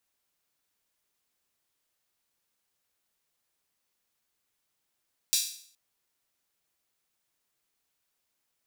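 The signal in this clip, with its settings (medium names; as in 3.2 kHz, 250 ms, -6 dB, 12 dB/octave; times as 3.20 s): open hi-hat length 0.42 s, high-pass 4.3 kHz, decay 0.55 s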